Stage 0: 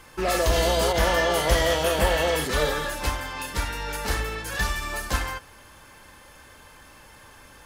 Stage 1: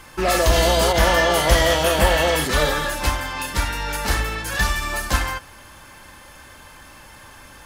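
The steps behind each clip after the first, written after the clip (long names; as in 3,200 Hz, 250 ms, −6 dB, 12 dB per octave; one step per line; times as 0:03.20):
parametric band 450 Hz −5.5 dB 0.3 octaves
level +5.5 dB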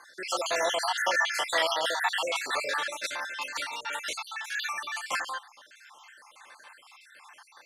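time-frequency cells dropped at random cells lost 57%
band-pass filter 720–7,800 Hz
level −3.5 dB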